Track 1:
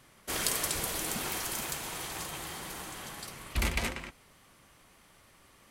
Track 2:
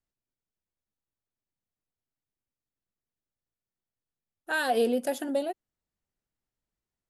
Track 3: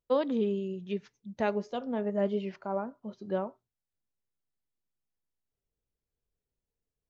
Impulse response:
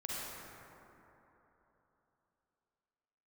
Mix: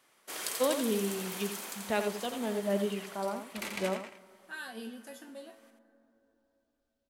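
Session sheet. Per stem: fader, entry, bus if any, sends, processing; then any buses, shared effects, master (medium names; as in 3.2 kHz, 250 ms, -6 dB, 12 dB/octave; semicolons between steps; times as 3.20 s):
-7.0 dB, 0.00 s, send -19 dB, echo send -5.5 dB, high-pass 350 Hz 12 dB/octave
-4.5 dB, 0.00 s, send -14 dB, no echo send, high-order bell 520 Hz -10 dB 1.3 oct; feedback comb 110 Hz, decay 0.26 s, harmonics all, mix 90%
-3.0 dB, 0.50 s, send -20.5 dB, echo send -7.5 dB, peaking EQ 3.7 kHz +9 dB 1.7 oct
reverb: on, RT60 3.5 s, pre-delay 38 ms
echo: delay 85 ms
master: none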